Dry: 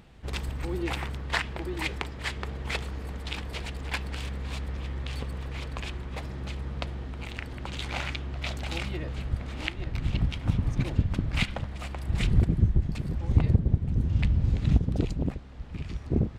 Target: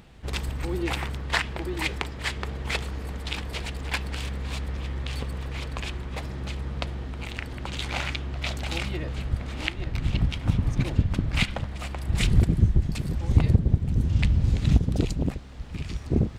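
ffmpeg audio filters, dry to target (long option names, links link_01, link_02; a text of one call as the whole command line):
ffmpeg -i in.wav -af "asetnsamples=nb_out_samples=441:pad=0,asendcmd='12.17 highshelf g 10',highshelf=frequency=4000:gain=3,volume=2.5dB" out.wav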